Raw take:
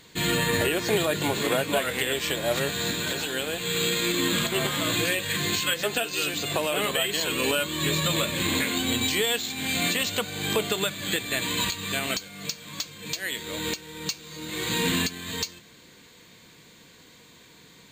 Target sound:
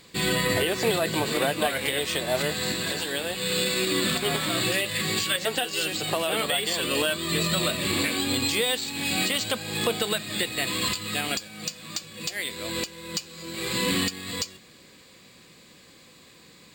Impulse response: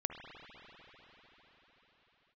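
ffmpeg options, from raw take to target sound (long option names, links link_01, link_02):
-af "asetrate=47187,aresample=44100"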